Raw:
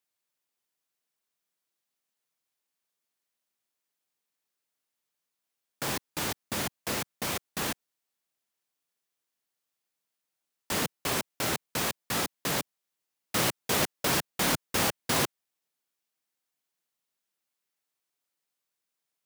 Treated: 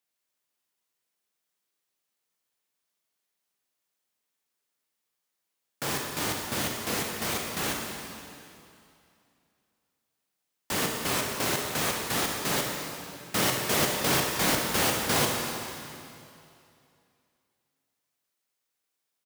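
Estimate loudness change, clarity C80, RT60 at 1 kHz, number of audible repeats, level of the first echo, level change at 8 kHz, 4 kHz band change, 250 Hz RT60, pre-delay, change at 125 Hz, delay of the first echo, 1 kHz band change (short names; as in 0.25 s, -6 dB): +2.5 dB, 3.0 dB, 2.6 s, 1, -11.0 dB, +3.0 dB, +3.0 dB, 2.5 s, 12 ms, +2.5 dB, 63 ms, +3.0 dB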